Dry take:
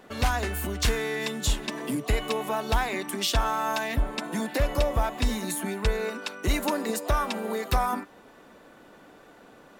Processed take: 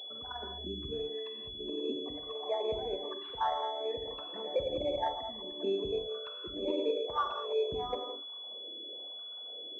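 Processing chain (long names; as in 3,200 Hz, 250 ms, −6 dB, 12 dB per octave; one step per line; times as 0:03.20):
spectral envelope exaggerated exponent 3
LFO wah 1 Hz 340–1,300 Hz, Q 2.8
reverb whose tail is shaped and stops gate 230 ms flat, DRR 2.5 dB
switching amplifier with a slow clock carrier 3,400 Hz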